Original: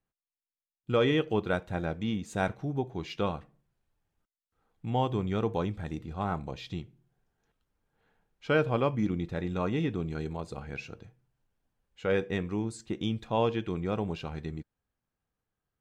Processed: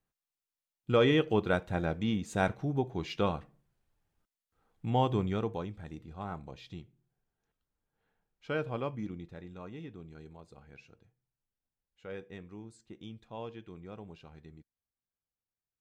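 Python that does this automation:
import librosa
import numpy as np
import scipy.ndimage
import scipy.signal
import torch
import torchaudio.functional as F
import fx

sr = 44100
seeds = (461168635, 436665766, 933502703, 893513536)

y = fx.gain(x, sr, db=fx.line((5.2, 0.5), (5.66, -8.0), (8.89, -8.0), (9.55, -15.0)))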